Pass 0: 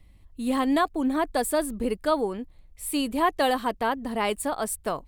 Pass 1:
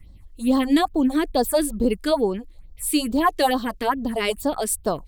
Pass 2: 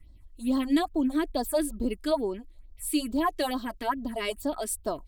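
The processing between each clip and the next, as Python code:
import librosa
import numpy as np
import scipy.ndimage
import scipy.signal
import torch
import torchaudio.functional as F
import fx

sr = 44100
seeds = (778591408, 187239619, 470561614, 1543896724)

y1 = fx.phaser_stages(x, sr, stages=4, low_hz=120.0, high_hz=2400.0, hz=2.3, feedback_pct=30)
y1 = F.gain(torch.from_numpy(y1), 6.5).numpy()
y2 = y1 + 0.48 * np.pad(y1, (int(3.1 * sr / 1000.0), 0))[:len(y1)]
y2 = F.gain(torch.from_numpy(y2), -8.5).numpy()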